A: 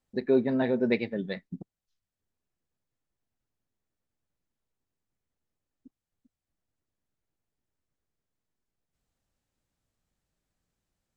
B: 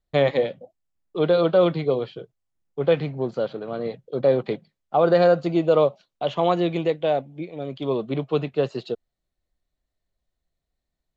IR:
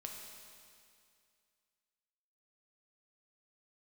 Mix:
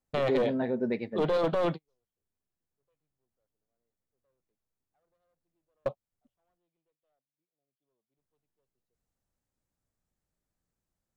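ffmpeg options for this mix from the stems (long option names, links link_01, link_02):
-filter_complex "[0:a]equalizer=frequency=3200:width_type=o:width=1.4:gain=-6.5,volume=-3.5dB,asplit=3[link_01][link_02][link_03];[link_01]atrim=end=6.58,asetpts=PTS-STARTPTS,afade=type=out:start_time=6.576:duration=0.004:curve=hsin[link_04];[link_02]atrim=start=6.58:end=8.18,asetpts=PTS-STARTPTS,volume=0[link_05];[link_03]atrim=start=8.18,asetpts=PTS-STARTPTS,afade=type=in:duration=0.004:curve=hsin[link_06];[link_04][link_05][link_06]concat=n=3:v=0:a=1,asplit=2[link_07][link_08];[1:a]equalizer=frequency=760:width=2.4:gain=5,aeval=exprs='clip(val(0),-1,0.112)':channel_layout=same,volume=-3.5dB[link_09];[link_08]apad=whole_len=492302[link_10];[link_09][link_10]sidechaingate=range=-57dB:threshold=-59dB:ratio=16:detection=peak[link_11];[link_07][link_11]amix=inputs=2:normalize=0,alimiter=limit=-18.5dB:level=0:latency=1:release=16"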